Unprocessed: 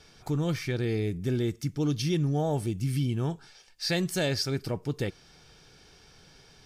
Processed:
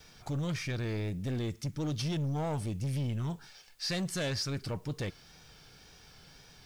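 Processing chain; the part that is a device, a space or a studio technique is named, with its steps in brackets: peaking EQ 380 Hz -5 dB 0.7 oct; compact cassette (saturation -29 dBFS, distortion -11 dB; low-pass 10 kHz 12 dB/octave; wow and flutter; white noise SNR 35 dB)

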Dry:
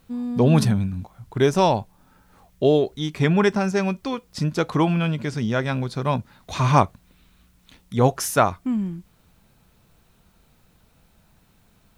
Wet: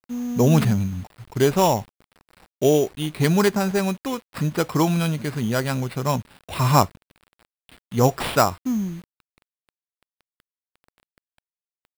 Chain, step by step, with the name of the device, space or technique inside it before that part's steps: early 8-bit sampler (sample-rate reducer 6.4 kHz, jitter 0%; bit crusher 8-bit)

